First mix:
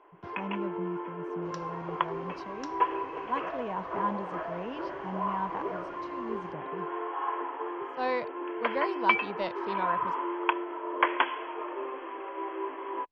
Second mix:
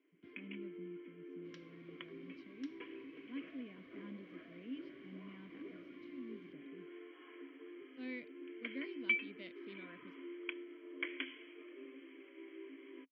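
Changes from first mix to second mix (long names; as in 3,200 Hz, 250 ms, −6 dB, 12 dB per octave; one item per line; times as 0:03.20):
second sound +6.0 dB
master: add formant filter i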